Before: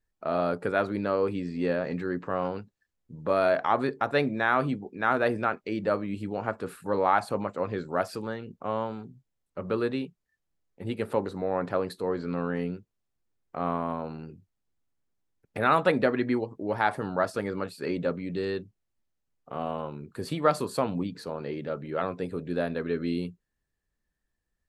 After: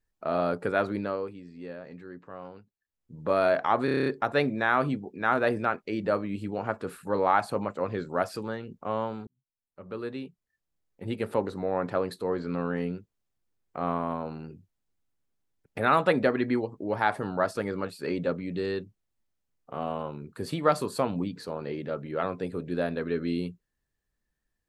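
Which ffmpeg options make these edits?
ffmpeg -i in.wav -filter_complex "[0:a]asplit=11[link_01][link_02][link_03][link_04][link_05][link_06][link_07][link_08][link_09][link_10][link_11];[link_01]atrim=end=1.33,asetpts=PTS-STARTPTS,afade=type=out:start_time=0.92:duration=0.41:silence=0.223872[link_12];[link_02]atrim=start=1.33:end=2.83,asetpts=PTS-STARTPTS,volume=-13dB[link_13];[link_03]atrim=start=2.83:end=3.882,asetpts=PTS-STARTPTS,afade=type=in:duration=0.41:silence=0.223872[link_14];[link_04]atrim=start=3.848:end=3.882[link_15];[link_05]atrim=start=3.848:end=3.882[link_16];[link_06]atrim=start=3.848:end=3.882[link_17];[link_07]atrim=start=3.848:end=3.882[link_18];[link_08]atrim=start=3.848:end=3.882[link_19];[link_09]atrim=start=3.848:end=3.882[link_20];[link_10]atrim=start=3.848:end=9.06,asetpts=PTS-STARTPTS,afade=type=out:start_time=5.208:duration=0.004:curve=hsin[link_21];[link_11]atrim=start=9.06,asetpts=PTS-STARTPTS,afade=type=in:duration=1.81[link_22];[link_12][link_13][link_14]concat=n=3:v=0:a=1[link_23];[link_23][link_15]acrossfade=duration=0.004:curve1=hsin:curve2=hsin[link_24];[link_24][link_16]acrossfade=duration=0.004:curve1=hsin:curve2=hsin[link_25];[link_25][link_17]acrossfade=duration=0.004:curve1=hsin:curve2=hsin[link_26];[link_26][link_18]acrossfade=duration=0.004:curve1=hsin:curve2=hsin[link_27];[link_27][link_19]acrossfade=duration=0.004:curve1=hsin:curve2=hsin[link_28];[link_28][link_20]acrossfade=duration=0.004:curve1=hsin:curve2=hsin[link_29];[link_21][link_22]concat=n=2:v=0:a=1[link_30];[link_29][link_30]acrossfade=duration=0.004:curve1=hsin:curve2=hsin" out.wav

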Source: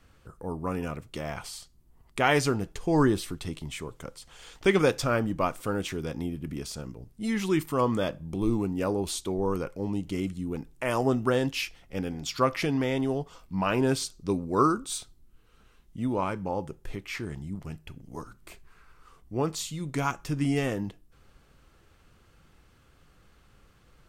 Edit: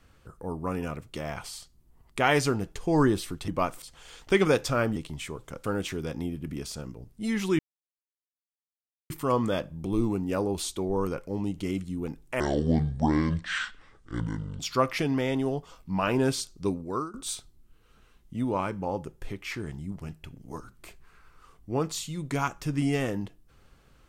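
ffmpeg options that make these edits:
ffmpeg -i in.wav -filter_complex "[0:a]asplit=9[link_01][link_02][link_03][link_04][link_05][link_06][link_07][link_08][link_09];[link_01]atrim=end=3.482[link_10];[link_02]atrim=start=5.298:end=5.642[link_11];[link_03]atrim=start=4.158:end=5.302[link_12];[link_04]atrim=start=3.478:end=4.162[link_13];[link_05]atrim=start=5.638:end=7.59,asetpts=PTS-STARTPTS,afade=type=out:start_time=1.948:duration=0.004:curve=hsin,apad=pad_dur=1.51[link_14];[link_06]atrim=start=7.59:end=10.894,asetpts=PTS-STARTPTS,afade=type=in:duration=0.004:curve=hsin[link_15];[link_07]atrim=start=10.89:end=12.23,asetpts=PTS-STARTPTS,asetrate=26901,aresample=44100,atrim=end_sample=96875,asetpts=PTS-STARTPTS[link_16];[link_08]atrim=start=12.226:end=14.77,asetpts=PTS-STARTPTS,afade=type=out:start_time=2.054:duration=0.49:silence=0.0794328[link_17];[link_09]atrim=start=14.77,asetpts=PTS-STARTPTS,afade=type=in:duration=0.004:curve=hsin:silence=0.0794328[link_18];[link_10][link_11]acrossfade=duration=0.004:curve1=hsin:curve2=hsin[link_19];[link_19][link_12]acrossfade=duration=0.004:curve1=hsin:curve2=hsin[link_20];[link_20][link_13]acrossfade=duration=0.004:curve1=hsin:curve2=hsin[link_21];[link_14][link_15]concat=n=2:v=0:a=1[link_22];[link_21][link_22]acrossfade=duration=0.004:curve1=hsin:curve2=hsin[link_23];[link_23][link_16]acrossfade=duration=0.004:curve1=hsin:curve2=hsin[link_24];[link_17][link_18]concat=n=2:v=0:a=1[link_25];[link_24][link_25]acrossfade=duration=0.004:curve1=hsin:curve2=hsin" out.wav

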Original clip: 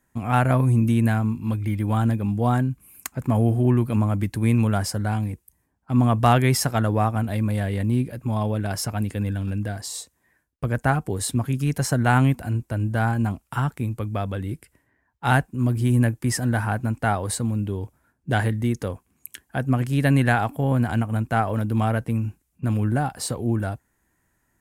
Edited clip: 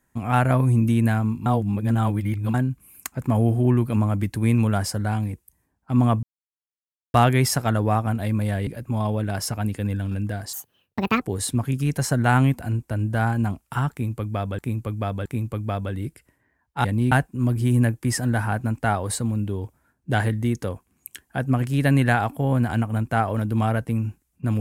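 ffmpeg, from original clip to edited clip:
ffmpeg -i in.wav -filter_complex "[0:a]asplit=11[link_01][link_02][link_03][link_04][link_05][link_06][link_07][link_08][link_09][link_10][link_11];[link_01]atrim=end=1.462[link_12];[link_02]atrim=start=1.458:end=2.542,asetpts=PTS-STARTPTS,areverse[link_13];[link_03]atrim=start=2.538:end=6.23,asetpts=PTS-STARTPTS,afade=type=out:start_time=3.688:duration=0.004:curve=hsin,apad=pad_dur=0.91[link_14];[link_04]atrim=start=6.23:end=7.762,asetpts=PTS-STARTPTS,afade=type=in:duration=0.004:curve=hsin[link_15];[link_05]atrim=start=8.028:end=9.894[link_16];[link_06]atrim=start=9.89:end=11.02,asetpts=PTS-STARTPTS,asetrate=72765,aresample=44100[link_17];[link_07]atrim=start=11.016:end=14.392[link_18];[link_08]atrim=start=13.718:end=14.392[link_19];[link_09]atrim=start=13.718:end=15.312[link_20];[link_10]atrim=start=7.758:end=8.032[link_21];[link_11]atrim=start=15.308[link_22];[link_12][link_13]acrossfade=duration=0.004:curve1=hsin:curve2=hsin[link_23];[link_14][link_15]concat=n=2:v=0:a=1[link_24];[link_23][link_24]acrossfade=duration=0.004:curve1=hsin:curve2=hsin[link_25];[link_25][link_16]acrossfade=duration=0.004:curve1=hsin:curve2=hsin[link_26];[link_26][link_17]acrossfade=duration=0.004:curve1=hsin:curve2=hsin[link_27];[link_27][link_18]acrossfade=duration=0.004:curve1=hsin:curve2=hsin[link_28];[link_28][link_19]acrossfade=duration=0.004:curve1=hsin:curve2=hsin[link_29];[link_29][link_20]acrossfade=duration=0.004:curve1=hsin:curve2=hsin[link_30];[link_30][link_21]acrossfade=duration=0.004:curve1=hsin:curve2=hsin[link_31];[link_31][link_22]acrossfade=duration=0.004:curve1=hsin:curve2=hsin" out.wav

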